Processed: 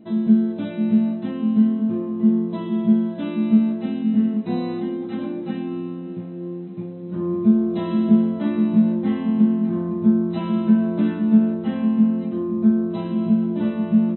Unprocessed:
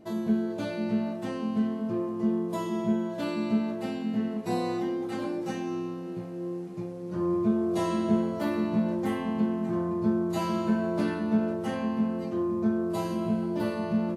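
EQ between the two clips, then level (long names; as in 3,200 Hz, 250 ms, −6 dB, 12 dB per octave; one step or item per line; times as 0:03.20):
linear-phase brick-wall low-pass 4,100 Hz
parametric band 220 Hz +14.5 dB 1.1 octaves
high-shelf EQ 3,000 Hz +9 dB
−3.5 dB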